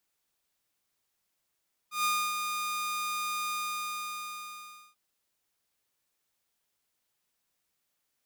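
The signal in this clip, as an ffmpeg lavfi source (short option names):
-f lavfi -i "aevalsrc='0.075*(2*mod(1220*t,1)-1)':d=3.04:s=44100,afade=t=in:d=0.133,afade=t=out:st=0.133:d=0.285:silence=0.501,afade=t=out:st=1.6:d=1.44"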